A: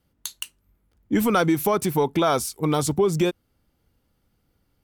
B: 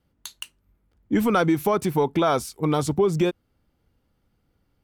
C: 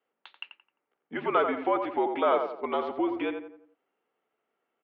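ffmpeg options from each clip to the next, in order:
-af "highshelf=f=5k:g=-8.5"
-filter_complex "[0:a]asplit=2[a][b];[b]adelay=87,lowpass=f=1.8k:p=1,volume=-5.5dB,asplit=2[c][d];[d]adelay=87,lowpass=f=1.8k:p=1,volume=0.44,asplit=2[e][f];[f]adelay=87,lowpass=f=1.8k:p=1,volume=0.44,asplit=2[g][h];[h]adelay=87,lowpass=f=1.8k:p=1,volume=0.44,asplit=2[i][j];[j]adelay=87,lowpass=f=1.8k:p=1,volume=0.44[k];[a][c][e][g][i][k]amix=inputs=6:normalize=0,highpass=f=450:t=q:w=0.5412,highpass=f=450:t=q:w=1.307,lowpass=f=3.1k:t=q:w=0.5176,lowpass=f=3.1k:t=q:w=0.7071,lowpass=f=3.1k:t=q:w=1.932,afreqshift=-60,volume=-2.5dB"

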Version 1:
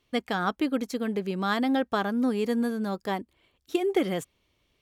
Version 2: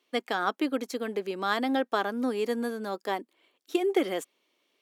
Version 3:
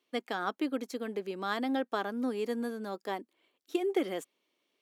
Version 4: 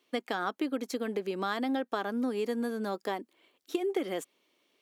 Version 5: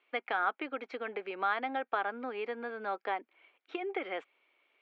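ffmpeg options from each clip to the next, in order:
-af "highpass=f=270:w=0.5412,highpass=f=270:w=1.3066"
-af "lowshelf=f=220:g=6.5,volume=-6dB"
-af "acompressor=threshold=-36dB:ratio=3,volume=6.5dB"
-af "highpass=470,equalizer=f=790:t=q:w=4:g=5,equalizer=f=1.4k:t=q:w=4:g=7,equalizer=f=2.3k:t=q:w=4:g=9,lowpass=f=3.1k:w=0.5412,lowpass=f=3.1k:w=1.3066,volume=-2dB"

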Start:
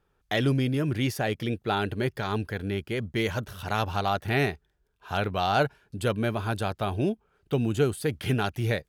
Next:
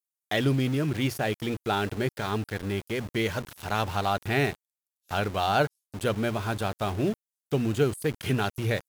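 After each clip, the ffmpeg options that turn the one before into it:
-filter_complex "[0:a]bandreject=f=60:t=h:w=6,bandreject=f=120:t=h:w=6,bandreject=f=180:t=h:w=6,acrossover=split=6900[a][b];[a]aeval=exprs='val(0)*gte(abs(val(0)),0.0168)':c=same[c];[c][b]amix=inputs=2:normalize=0"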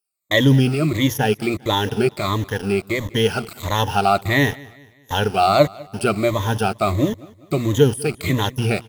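-af "afftfilt=real='re*pow(10,16/40*sin(2*PI*(1.1*log(max(b,1)*sr/1024/100)/log(2)-(-1.5)*(pts-256)/sr)))':imag='im*pow(10,16/40*sin(2*PI*(1.1*log(max(b,1)*sr/1024/100)/log(2)-(-1.5)*(pts-256)/sr)))':win_size=1024:overlap=0.75,equalizer=f=1.6k:w=6:g=-5.5,aecho=1:1:199|398|597:0.075|0.0315|0.0132,volume=6dB"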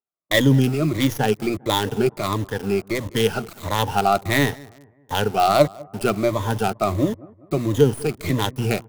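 -filter_complex "[0:a]highpass=f=77:p=1,acrossover=split=120|1500[a][b][c];[c]acrusher=bits=4:dc=4:mix=0:aa=0.000001[d];[a][b][d]amix=inputs=3:normalize=0,volume=-1dB"

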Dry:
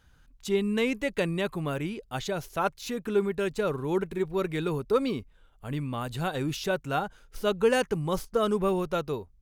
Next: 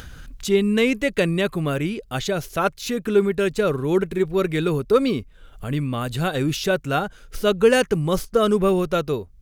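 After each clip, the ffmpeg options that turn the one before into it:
-af "equalizer=f=900:w=2.9:g=-7,acompressor=mode=upward:threshold=-35dB:ratio=2.5,volume=8dB"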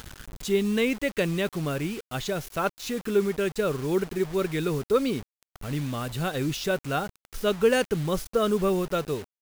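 -af "acrusher=bits=5:mix=0:aa=0.000001,volume=-5.5dB"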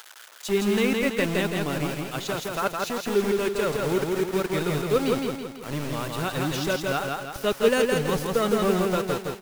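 -filter_complex "[0:a]acrossover=split=580[a][b];[a]aeval=exprs='val(0)*gte(abs(val(0)),0.0355)':c=same[c];[c][b]amix=inputs=2:normalize=0,aecho=1:1:165|330|495|660|825|990:0.708|0.34|0.163|0.0783|0.0376|0.018"

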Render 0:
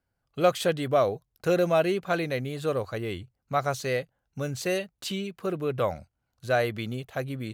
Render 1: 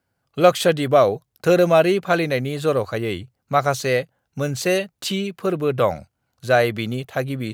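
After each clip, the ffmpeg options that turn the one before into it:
-af "highpass=93,volume=8dB"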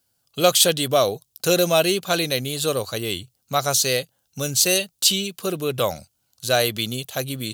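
-af "aexciter=amount=5.5:drive=5.1:freq=2.9k,volume=-4dB"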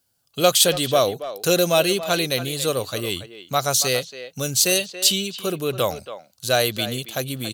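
-filter_complex "[0:a]asplit=2[a][b];[b]adelay=280,highpass=300,lowpass=3.4k,asoftclip=type=hard:threshold=-11dB,volume=-12dB[c];[a][c]amix=inputs=2:normalize=0"

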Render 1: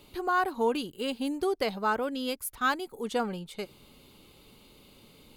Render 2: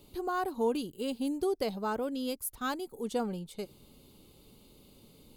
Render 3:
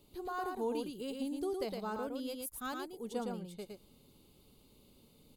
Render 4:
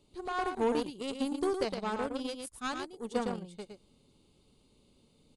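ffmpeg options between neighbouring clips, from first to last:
-af "equalizer=f=1.8k:w=0.58:g=-10.5"
-af "aecho=1:1:112:0.631,volume=-7dB"
-af "aeval=exprs='0.0596*(cos(1*acos(clip(val(0)/0.0596,-1,1)))-cos(1*PI/2))+0.00531*(cos(7*acos(clip(val(0)/0.0596,-1,1)))-cos(7*PI/2))':c=same,aresample=22050,aresample=44100,volume=6.5dB"

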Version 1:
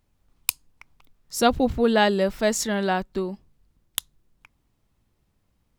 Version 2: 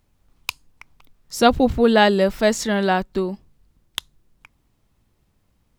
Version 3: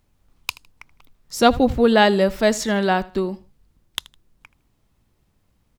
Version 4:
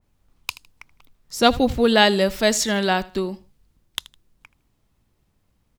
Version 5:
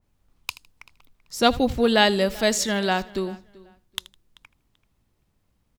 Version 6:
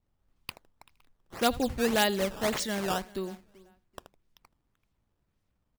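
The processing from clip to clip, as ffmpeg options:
-filter_complex "[0:a]acrossover=split=4800[a][b];[b]acompressor=threshold=-33dB:ratio=4:attack=1:release=60[c];[a][c]amix=inputs=2:normalize=0,volume=4.5dB"
-af "aecho=1:1:79|158:0.0944|0.0264"
-af "adynamicequalizer=threshold=0.02:dfrequency=2100:dqfactor=0.7:tfrequency=2100:tqfactor=0.7:attack=5:release=100:ratio=0.375:range=4:mode=boostabove:tftype=highshelf,volume=-2dB"
-filter_complex "[0:a]asplit=2[a][b];[b]adelay=386,lowpass=f=4.8k:p=1,volume=-22dB,asplit=2[c][d];[d]adelay=386,lowpass=f=4.8k:p=1,volume=0.23[e];[a][c][e]amix=inputs=3:normalize=0,volume=-2.5dB"
-af "acrusher=samples=12:mix=1:aa=0.000001:lfo=1:lforange=19.2:lforate=1.8,volume=-7.5dB"

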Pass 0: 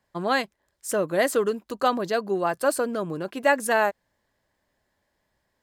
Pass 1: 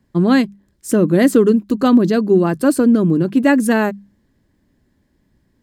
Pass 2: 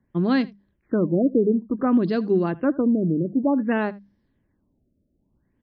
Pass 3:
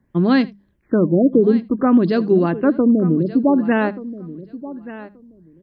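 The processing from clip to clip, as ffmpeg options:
-af "lowshelf=f=420:t=q:w=1.5:g=14,bandreject=f=50:t=h:w=6,bandreject=f=100:t=h:w=6,bandreject=f=150:t=h:w=6,bandreject=f=200:t=h:w=6,volume=3.5dB"
-af "aecho=1:1:79:0.0794,afftfilt=real='re*lt(b*sr/1024,650*pow(6300/650,0.5+0.5*sin(2*PI*0.55*pts/sr)))':imag='im*lt(b*sr/1024,650*pow(6300/650,0.5+0.5*sin(2*PI*0.55*pts/sr)))':win_size=1024:overlap=0.75,volume=-7.5dB"
-af "aecho=1:1:1180|2360:0.158|0.0254,volume=5.5dB"

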